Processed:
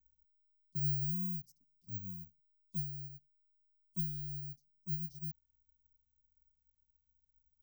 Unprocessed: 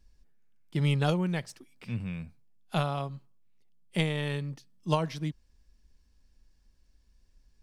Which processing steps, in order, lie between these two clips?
G.711 law mismatch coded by A; elliptic band-stop 190–5800 Hz, stop band 60 dB; air absorption 51 m; careless resampling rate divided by 2×, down filtered, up zero stuff; gain -9 dB

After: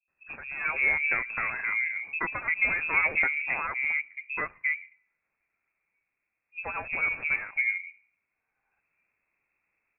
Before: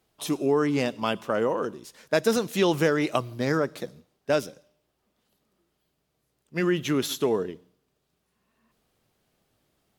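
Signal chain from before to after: tracing distortion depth 0.42 ms; notches 60/120/180/240/300/360 Hz; in parallel at -8.5 dB: sample gate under -23.5 dBFS; on the sum: three bands offset in time lows, highs, mids 80/350 ms, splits 160/700 Hz; inverted band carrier 2600 Hz; gain -4 dB

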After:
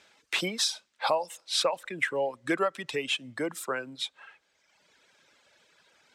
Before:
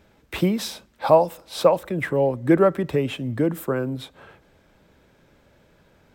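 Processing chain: weighting filter ITU-R 468; reverb removal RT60 1.4 s; high shelf 5500 Hz -5 dB; compressor 6:1, threshold -21 dBFS, peak gain reduction 8.5 dB; gain -1.5 dB

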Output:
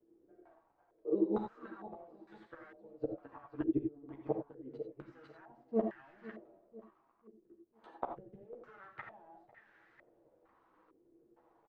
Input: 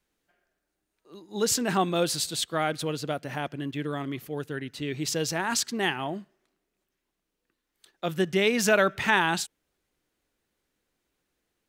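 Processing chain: one-sided fold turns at -25.5 dBFS; HPF 230 Hz 12 dB/oct; comb 6.3 ms, depth 35%; in parallel at +1 dB: limiter -20 dBFS, peak gain reduction 11.5 dB; on the sum: compressor 2.5:1, threshold -35 dBFS, peak gain reduction 13 dB; flipped gate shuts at -25 dBFS, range -32 dB; companded quantiser 6-bit; chorus voices 6, 0.31 Hz, delay 12 ms, depth 3.7 ms; on a send: feedback echo 0.499 s, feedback 42%, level -15 dB; on the sum: non-linear reverb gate 0.11 s rising, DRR 5 dB; stepped low-pass 2.2 Hz 380–1700 Hz; gain +5.5 dB

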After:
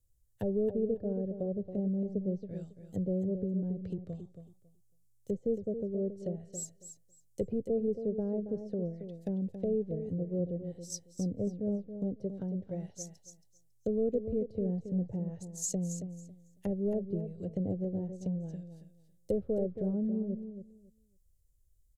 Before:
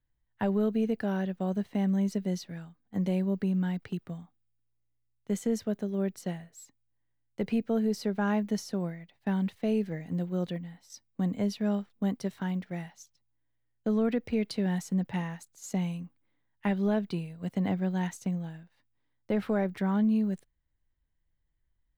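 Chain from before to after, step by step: treble ducked by the level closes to 540 Hz, closed at -28.5 dBFS; EQ curve 100 Hz 0 dB, 220 Hz -14 dB, 530 Hz -2 dB, 980 Hz -26 dB, 2100 Hz -22 dB, 7300 Hz +7 dB; on a send: feedback echo 0.275 s, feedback 18%, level -9.5 dB; on the sum: gain +6.5 dB

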